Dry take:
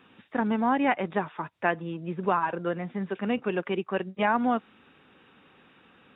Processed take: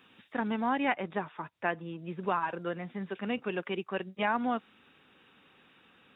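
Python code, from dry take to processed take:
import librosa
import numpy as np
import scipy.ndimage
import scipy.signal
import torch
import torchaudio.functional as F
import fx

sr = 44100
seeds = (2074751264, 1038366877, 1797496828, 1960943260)

y = fx.high_shelf(x, sr, hz=2700.0, db=fx.steps((0.0, 11.5), (0.91, 3.5), (1.98, 9.0)))
y = y * 10.0 ** (-6.0 / 20.0)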